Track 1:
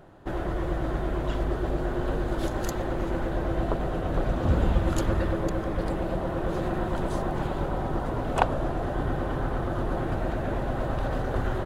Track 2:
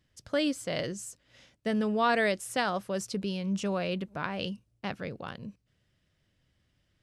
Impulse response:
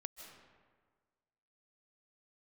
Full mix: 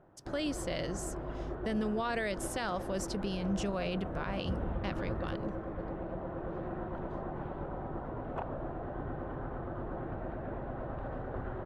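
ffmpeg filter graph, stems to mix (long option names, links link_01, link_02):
-filter_complex "[0:a]lowpass=1700,lowshelf=frequency=66:gain=-6,volume=-9.5dB[link_01];[1:a]agate=range=-33dB:threshold=-58dB:ratio=3:detection=peak,volume=-2dB[link_02];[link_01][link_02]amix=inputs=2:normalize=0,alimiter=level_in=1dB:limit=-24dB:level=0:latency=1:release=48,volume=-1dB"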